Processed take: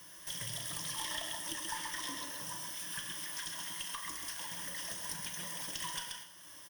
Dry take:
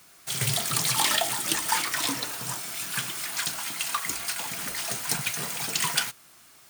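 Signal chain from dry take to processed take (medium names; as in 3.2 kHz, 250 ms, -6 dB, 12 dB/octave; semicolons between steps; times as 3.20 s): on a send: delay 131 ms -6.5 dB; on the sum: Schroeder reverb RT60 0.52 s, combs from 26 ms, DRR 8.5 dB; compression 2.5:1, threshold -45 dBFS, peak gain reduction 17 dB; rippled EQ curve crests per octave 1.2, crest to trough 13 dB; valve stage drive 27 dB, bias 0.5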